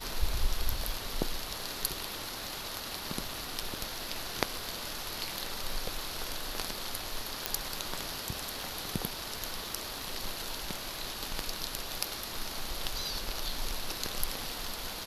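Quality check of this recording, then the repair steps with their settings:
crackle 44/s -42 dBFS
7.46 pop -9 dBFS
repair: de-click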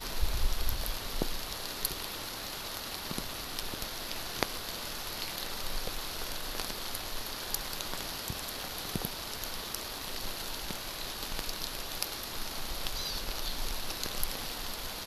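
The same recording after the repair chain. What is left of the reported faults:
none

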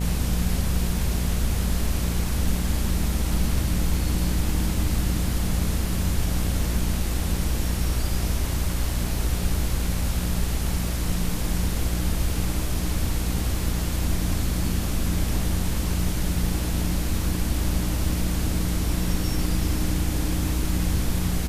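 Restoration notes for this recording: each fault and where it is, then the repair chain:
buzz 60 Hz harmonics 15 -29 dBFS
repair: de-hum 60 Hz, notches 15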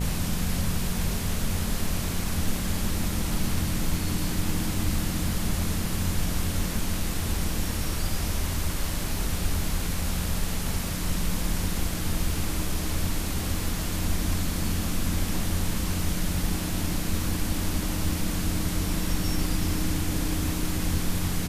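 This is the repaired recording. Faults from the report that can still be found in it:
none

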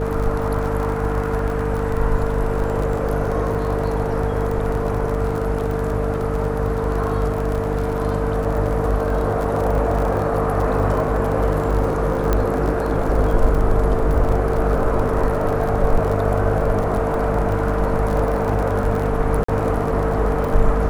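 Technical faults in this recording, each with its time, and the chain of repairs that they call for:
crackle 35/s -24 dBFS
hum 50 Hz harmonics 6 -24 dBFS
tone 450 Hz -24 dBFS
12.33 pop -6 dBFS
19.44–19.48 gap 44 ms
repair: de-click; de-hum 50 Hz, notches 6; notch 450 Hz, Q 30; interpolate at 19.44, 44 ms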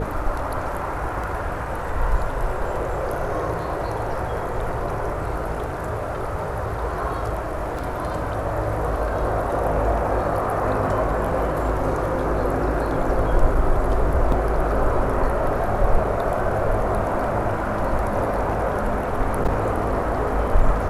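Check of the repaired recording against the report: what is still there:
none

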